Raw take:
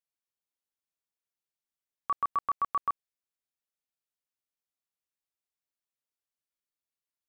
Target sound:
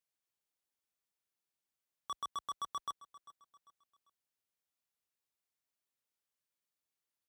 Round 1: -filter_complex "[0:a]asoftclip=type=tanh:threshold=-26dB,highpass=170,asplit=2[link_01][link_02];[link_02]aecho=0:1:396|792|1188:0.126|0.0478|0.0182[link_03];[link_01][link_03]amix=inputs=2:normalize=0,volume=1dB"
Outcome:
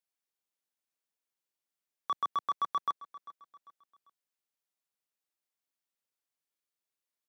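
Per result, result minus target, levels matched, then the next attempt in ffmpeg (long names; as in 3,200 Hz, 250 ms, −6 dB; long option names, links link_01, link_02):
soft clipping: distortion −9 dB; 125 Hz band −5.5 dB
-filter_complex "[0:a]asoftclip=type=tanh:threshold=-37dB,highpass=170,asplit=2[link_01][link_02];[link_02]aecho=0:1:396|792|1188:0.126|0.0478|0.0182[link_03];[link_01][link_03]amix=inputs=2:normalize=0,volume=1dB"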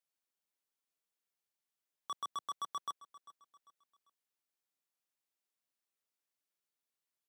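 125 Hz band −5.5 dB
-filter_complex "[0:a]asoftclip=type=tanh:threshold=-37dB,highpass=45,asplit=2[link_01][link_02];[link_02]aecho=0:1:396|792|1188:0.126|0.0478|0.0182[link_03];[link_01][link_03]amix=inputs=2:normalize=0,volume=1dB"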